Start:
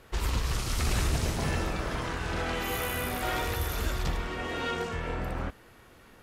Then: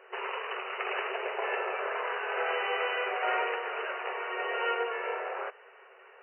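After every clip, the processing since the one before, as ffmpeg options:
ffmpeg -i in.wav -af "afftfilt=real='re*between(b*sr/4096,370,3000)':imag='im*between(b*sr/4096,370,3000)':win_size=4096:overlap=0.75,volume=3dB" out.wav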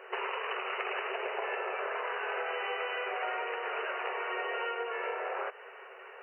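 ffmpeg -i in.wav -af "acompressor=threshold=-37dB:ratio=10,volume=5.5dB" out.wav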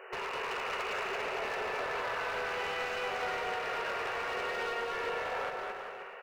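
ffmpeg -i in.wav -filter_complex "[0:a]volume=34dB,asoftclip=hard,volume=-34dB,asplit=2[link_01][link_02];[link_02]aecho=0:1:220|396|536.8|649.4|739.6:0.631|0.398|0.251|0.158|0.1[link_03];[link_01][link_03]amix=inputs=2:normalize=0" out.wav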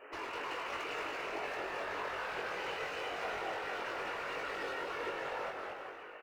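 ffmpeg -i in.wav -filter_complex "[0:a]afftfilt=real='hypot(re,im)*cos(2*PI*random(0))':imag='hypot(re,im)*sin(2*PI*random(1))':win_size=512:overlap=0.75,asplit=2[link_01][link_02];[link_02]adelay=21,volume=-3dB[link_03];[link_01][link_03]amix=inputs=2:normalize=0" out.wav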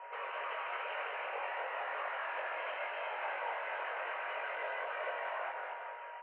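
ffmpeg -i in.wav -af "aeval=exprs='val(0)+0.00447*sin(2*PI*810*n/s)':channel_layout=same,highpass=frequency=230:width_type=q:width=0.5412,highpass=frequency=230:width_type=q:width=1.307,lowpass=frequency=2600:width_type=q:width=0.5176,lowpass=frequency=2600:width_type=q:width=0.7071,lowpass=frequency=2600:width_type=q:width=1.932,afreqshift=140" out.wav

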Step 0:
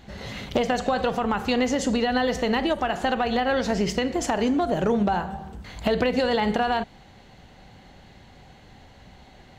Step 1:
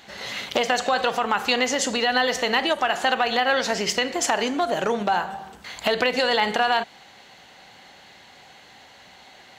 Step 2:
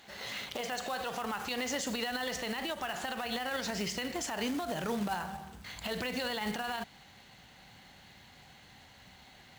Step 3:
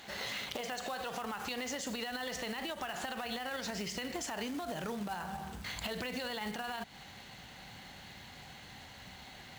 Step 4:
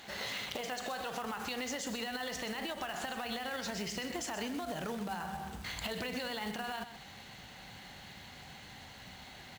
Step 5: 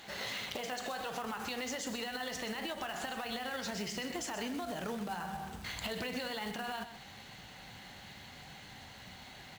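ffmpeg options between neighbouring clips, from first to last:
ffmpeg -i in.wav -af "highpass=frequency=1200:poles=1,volume=8dB" out.wav
ffmpeg -i in.wav -af "asubboost=boost=4:cutoff=210,acrusher=bits=3:mode=log:mix=0:aa=0.000001,alimiter=limit=-18dB:level=0:latency=1:release=43,volume=-8dB" out.wav
ffmpeg -i in.wav -af "acompressor=threshold=-41dB:ratio=6,volume=5dB" out.wav
ffmpeg -i in.wav -af "aecho=1:1:127:0.282" out.wav
ffmpeg -i in.wav -af "flanger=delay=6:depth=3.9:regen=-72:speed=0.94:shape=triangular,volume=4dB" out.wav

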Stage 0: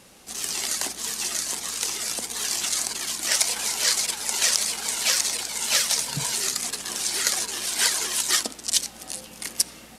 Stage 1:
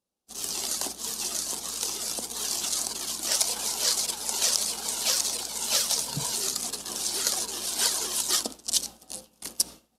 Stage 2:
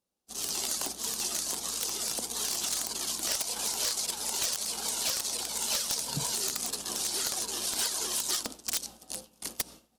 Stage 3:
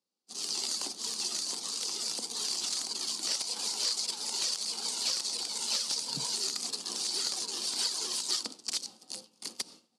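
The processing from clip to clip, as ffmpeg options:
ffmpeg -i in.wav -af "agate=range=-33dB:threshold=-31dB:ratio=3:detection=peak,equalizer=frequency=125:width_type=o:width=1:gain=-3,equalizer=frequency=2000:width_type=o:width=1:gain=-12,equalizer=frequency=8000:width_type=o:width=1:gain=-3" out.wav
ffmpeg -i in.wav -af "acompressor=threshold=-27dB:ratio=5,aeval=exprs='(mod(7.94*val(0)+1,2)-1)/7.94':channel_layout=same" out.wav
ffmpeg -i in.wav -af "highpass=frequency=140:width=0.5412,highpass=frequency=140:width=1.3066,equalizer=frequency=160:width_type=q:width=4:gain=-5,equalizer=frequency=640:width_type=q:width=4:gain=-6,equalizer=frequency=1600:width_type=q:width=4:gain=-4,equalizer=frequency=4600:width_type=q:width=4:gain=9,lowpass=frequency=9700:width=0.5412,lowpass=frequency=9700:width=1.3066,volume=-3.5dB" out.wav

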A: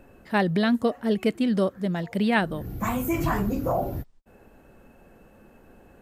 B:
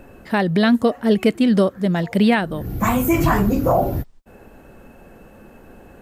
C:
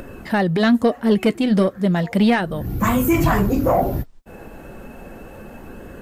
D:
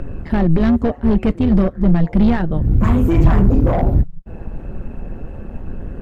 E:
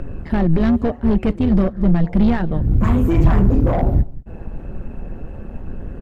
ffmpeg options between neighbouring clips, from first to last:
ffmpeg -i in.wav -af "alimiter=limit=-14.5dB:level=0:latency=1:release=408,volume=8.5dB" out.wav
ffmpeg -i in.wav -filter_complex "[0:a]asplit=2[link_01][link_02];[link_02]acompressor=mode=upward:threshold=-23dB:ratio=2.5,volume=-2dB[link_03];[link_01][link_03]amix=inputs=2:normalize=0,asoftclip=type=tanh:threshold=-3dB,flanger=delay=0.6:depth=5.6:regen=-62:speed=0.34:shape=sinusoidal" out.wav
ffmpeg -i in.wav -af "tremolo=f=160:d=0.75,asoftclip=type=hard:threshold=-18dB,aemphasis=mode=reproduction:type=riaa,volume=1dB" out.wav
ffmpeg -i in.wav -af "aecho=1:1:193:0.075,volume=-1.5dB" out.wav

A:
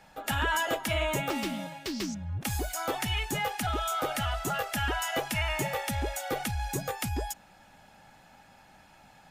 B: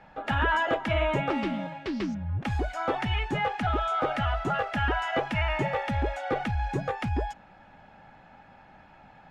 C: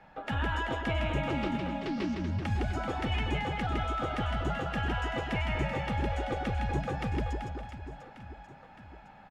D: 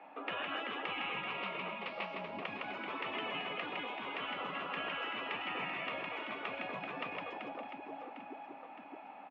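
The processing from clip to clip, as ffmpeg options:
ffmpeg -i in.wav -af "lowpass=2200,volume=4dB" out.wav
ffmpeg -i in.wav -filter_complex "[0:a]acrossover=split=330|3000[link_01][link_02][link_03];[link_02]acompressor=threshold=-34dB:ratio=3[link_04];[link_01][link_04][link_03]amix=inputs=3:normalize=0,aecho=1:1:160|384|697.6|1137|1751:0.631|0.398|0.251|0.158|0.1,volume=-3dB" out.wav
ffmpeg -i in.wav -af "highpass=frequency=270:width=0.5412,highpass=frequency=270:width=1.3066,equalizer=frequency=280:width_type=q:width=4:gain=9,equalizer=frequency=690:width_type=q:width=4:gain=6,equalizer=frequency=1100:width_type=q:width=4:gain=7,equalizer=frequency=1600:width_type=q:width=4:gain=-8,equalizer=frequency=2500:width_type=q:width=4:gain=7,lowpass=frequency=3200:width=0.5412,lowpass=frequency=3200:width=1.3066,afftfilt=real='re*lt(hypot(re,im),0.0708)':imag='im*lt(hypot(re,im),0.0708)':win_size=1024:overlap=0.75" out.wav

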